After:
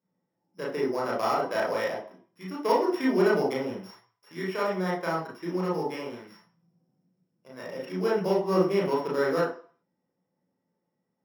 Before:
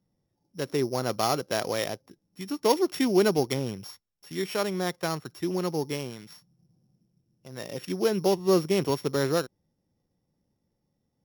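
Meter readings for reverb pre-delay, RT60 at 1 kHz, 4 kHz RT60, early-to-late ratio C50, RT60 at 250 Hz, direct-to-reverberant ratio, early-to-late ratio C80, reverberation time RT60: 31 ms, 0.55 s, 0.45 s, 5.0 dB, 0.40 s, -5.0 dB, 10.5 dB, 0.45 s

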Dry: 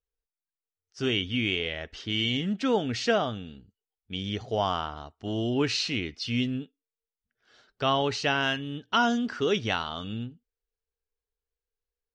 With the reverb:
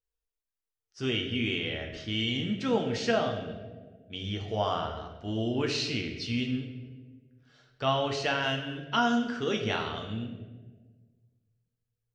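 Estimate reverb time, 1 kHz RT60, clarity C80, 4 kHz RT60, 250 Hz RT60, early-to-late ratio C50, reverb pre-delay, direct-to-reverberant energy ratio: 1.5 s, 1.2 s, 8.5 dB, 0.90 s, 1.8 s, 6.5 dB, 8 ms, 2.0 dB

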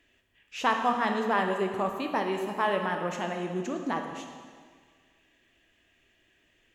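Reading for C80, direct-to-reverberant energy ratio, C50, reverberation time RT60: 6.5 dB, 3.5 dB, 5.0 dB, 1.8 s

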